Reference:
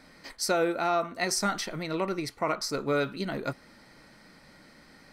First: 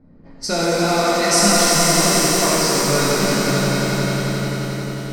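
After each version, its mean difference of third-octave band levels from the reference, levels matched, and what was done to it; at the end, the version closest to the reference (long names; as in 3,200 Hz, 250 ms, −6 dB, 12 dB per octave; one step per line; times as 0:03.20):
13.5 dB: low-pass that shuts in the quiet parts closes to 490 Hz, open at −24 dBFS
bass and treble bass +10 dB, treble +12 dB
on a send: echo that builds up and dies away 89 ms, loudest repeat 5, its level −8.5 dB
on the sum: reverb with rising layers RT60 3.2 s, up +7 semitones, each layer −8 dB, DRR −6 dB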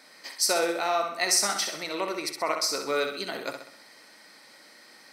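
7.0 dB: high-pass filter 390 Hz 12 dB per octave
high-shelf EQ 2,800 Hz +8 dB
notch filter 1,400 Hz, Q 23
on a send: flutter between parallel walls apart 11.1 metres, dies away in 0.59 s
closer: second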